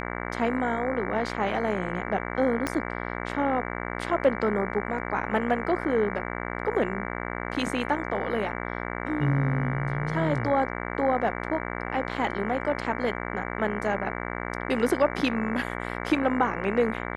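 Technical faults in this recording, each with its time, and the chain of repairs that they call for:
buzz 60 Hz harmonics 38 -33 dBFS
2.67 s: pop -13 dBFS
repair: de-click; de-hum 60 Hz, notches 38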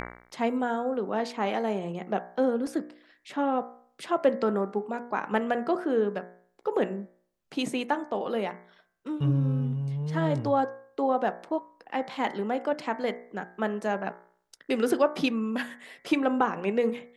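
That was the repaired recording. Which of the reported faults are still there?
2.67 s: pop

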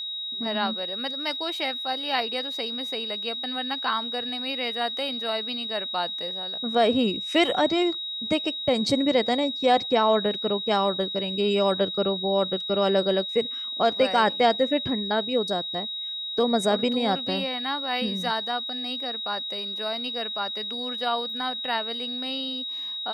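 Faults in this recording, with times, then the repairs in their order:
whine 3.8 kHz -30 dBFS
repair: band-stop 3.8 kHz, Q 30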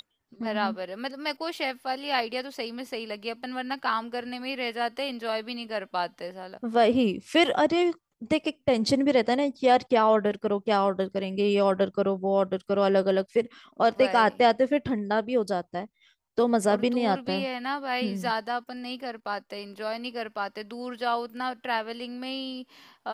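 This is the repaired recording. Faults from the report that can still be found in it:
nothing left

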